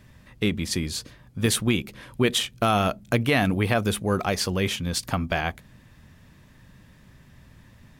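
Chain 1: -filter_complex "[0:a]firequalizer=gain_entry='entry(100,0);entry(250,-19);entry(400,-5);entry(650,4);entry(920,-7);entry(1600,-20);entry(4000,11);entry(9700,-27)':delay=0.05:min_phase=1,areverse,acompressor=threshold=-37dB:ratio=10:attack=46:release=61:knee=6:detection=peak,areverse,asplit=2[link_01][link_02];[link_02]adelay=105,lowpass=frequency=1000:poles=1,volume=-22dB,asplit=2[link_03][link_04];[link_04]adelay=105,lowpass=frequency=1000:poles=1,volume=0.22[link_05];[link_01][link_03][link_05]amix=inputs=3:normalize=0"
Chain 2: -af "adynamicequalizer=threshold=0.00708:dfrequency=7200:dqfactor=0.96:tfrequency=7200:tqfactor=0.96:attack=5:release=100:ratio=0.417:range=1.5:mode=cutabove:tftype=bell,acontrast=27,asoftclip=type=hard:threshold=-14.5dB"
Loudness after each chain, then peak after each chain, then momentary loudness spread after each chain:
−35.5, −21.5 LKFS; −18.0, −14.5 dBFS; 21, 7 LU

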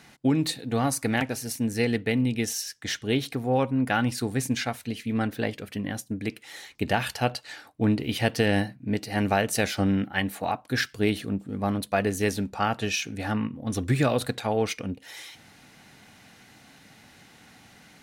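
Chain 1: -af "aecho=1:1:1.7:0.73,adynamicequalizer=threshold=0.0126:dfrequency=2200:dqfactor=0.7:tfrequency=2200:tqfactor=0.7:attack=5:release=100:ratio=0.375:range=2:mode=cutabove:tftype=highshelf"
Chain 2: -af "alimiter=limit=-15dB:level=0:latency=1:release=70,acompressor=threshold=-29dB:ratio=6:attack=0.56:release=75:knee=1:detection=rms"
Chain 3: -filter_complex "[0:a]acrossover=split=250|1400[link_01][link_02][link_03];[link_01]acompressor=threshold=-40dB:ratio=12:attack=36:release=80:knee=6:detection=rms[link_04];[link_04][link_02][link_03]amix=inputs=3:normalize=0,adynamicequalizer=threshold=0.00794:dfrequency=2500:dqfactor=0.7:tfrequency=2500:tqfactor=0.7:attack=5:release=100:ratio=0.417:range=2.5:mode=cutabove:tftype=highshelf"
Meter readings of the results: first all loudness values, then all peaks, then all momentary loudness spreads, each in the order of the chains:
−26.5, −35.5, −29.5 LKFS; −7.5, −23.0, −9.0 dBFS; 10, 17, 9 LU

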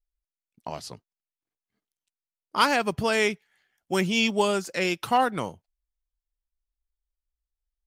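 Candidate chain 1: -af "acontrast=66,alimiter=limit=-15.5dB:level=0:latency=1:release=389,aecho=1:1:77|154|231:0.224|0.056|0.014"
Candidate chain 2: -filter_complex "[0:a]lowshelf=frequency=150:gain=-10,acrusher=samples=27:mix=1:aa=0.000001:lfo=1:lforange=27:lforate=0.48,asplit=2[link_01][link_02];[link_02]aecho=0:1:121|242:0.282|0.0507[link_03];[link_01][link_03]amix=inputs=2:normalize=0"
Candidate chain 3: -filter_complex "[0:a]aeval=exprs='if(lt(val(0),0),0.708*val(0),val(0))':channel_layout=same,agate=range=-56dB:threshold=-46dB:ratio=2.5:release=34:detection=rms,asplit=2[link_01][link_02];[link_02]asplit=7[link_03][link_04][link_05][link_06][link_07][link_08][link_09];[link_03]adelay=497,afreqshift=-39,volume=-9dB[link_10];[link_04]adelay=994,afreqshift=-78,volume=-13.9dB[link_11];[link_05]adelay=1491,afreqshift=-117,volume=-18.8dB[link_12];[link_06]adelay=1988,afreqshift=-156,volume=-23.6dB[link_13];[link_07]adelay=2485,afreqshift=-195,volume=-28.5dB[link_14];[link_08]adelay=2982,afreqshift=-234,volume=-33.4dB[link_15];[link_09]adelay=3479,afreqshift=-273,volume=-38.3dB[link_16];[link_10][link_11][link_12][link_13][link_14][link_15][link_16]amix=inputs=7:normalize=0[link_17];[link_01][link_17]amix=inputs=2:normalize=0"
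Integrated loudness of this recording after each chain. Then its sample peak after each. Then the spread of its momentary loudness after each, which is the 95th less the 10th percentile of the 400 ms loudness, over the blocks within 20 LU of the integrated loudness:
−26.5, −26.0, −27.0 LKFS; −14.0, −9.5, −9.0 dBFS; 12, 15, 19 LU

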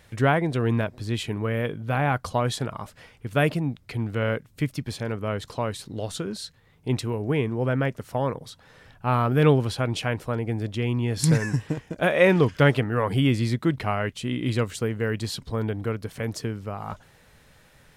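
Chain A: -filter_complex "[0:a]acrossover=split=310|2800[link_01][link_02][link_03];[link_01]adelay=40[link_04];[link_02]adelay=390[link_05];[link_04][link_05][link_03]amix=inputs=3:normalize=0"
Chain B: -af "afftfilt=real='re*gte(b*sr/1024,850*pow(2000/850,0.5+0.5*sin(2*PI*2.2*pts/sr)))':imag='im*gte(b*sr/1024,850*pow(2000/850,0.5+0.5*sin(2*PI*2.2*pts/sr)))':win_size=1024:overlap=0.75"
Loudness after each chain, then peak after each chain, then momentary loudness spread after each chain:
−27.0, −34.0 LKFS; −7.0, −8.0 dBFS; 11, 16 LU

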